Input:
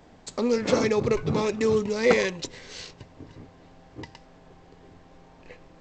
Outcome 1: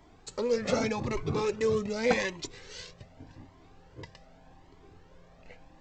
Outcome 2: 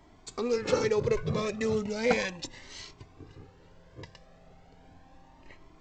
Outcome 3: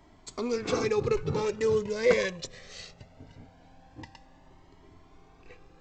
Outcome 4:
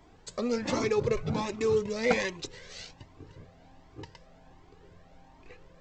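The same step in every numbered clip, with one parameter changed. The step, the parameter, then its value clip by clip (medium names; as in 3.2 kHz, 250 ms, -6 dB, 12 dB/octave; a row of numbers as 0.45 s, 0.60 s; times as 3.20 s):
Shepard-style flanger, rate: 0.85 Hz, 0.36 Hz, 0.21 Hz, 1.3 Hz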